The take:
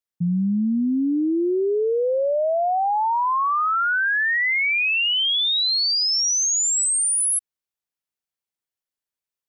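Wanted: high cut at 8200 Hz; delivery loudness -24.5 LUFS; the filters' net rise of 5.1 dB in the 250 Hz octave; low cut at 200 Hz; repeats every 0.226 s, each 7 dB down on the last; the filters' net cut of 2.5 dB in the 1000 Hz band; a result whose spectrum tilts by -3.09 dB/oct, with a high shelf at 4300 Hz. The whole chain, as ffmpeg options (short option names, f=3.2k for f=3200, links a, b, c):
-af "highpass=200,lowpass=8.2k,equalizer=f=250:t=o:g=8.5,equalizer=f=1k:t=o:g=-3.5,highshelf=f=4.3k:g=-4,aecho=1:1:226|452|678|904|1130:0.447|0.201|0.0905|0.0407|0.0183,volume=-5.5dB"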